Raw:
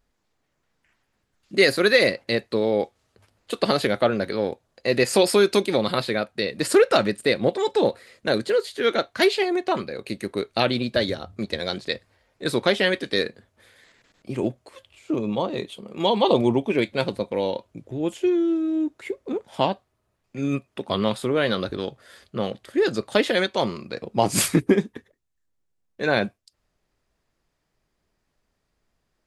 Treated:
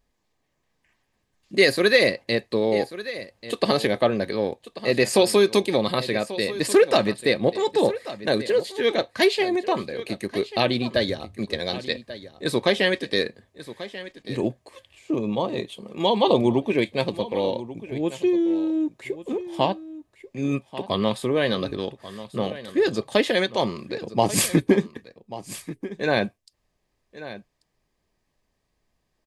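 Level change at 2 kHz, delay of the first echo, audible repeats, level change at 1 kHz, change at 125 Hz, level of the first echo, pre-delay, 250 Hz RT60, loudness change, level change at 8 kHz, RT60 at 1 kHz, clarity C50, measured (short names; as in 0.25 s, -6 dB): -0.5 dB, 1.138 s, 1, -0.5 dB, 0.0 dB, -15.0 dB, none, none, 0.0 dB, 0.0 dB, none, none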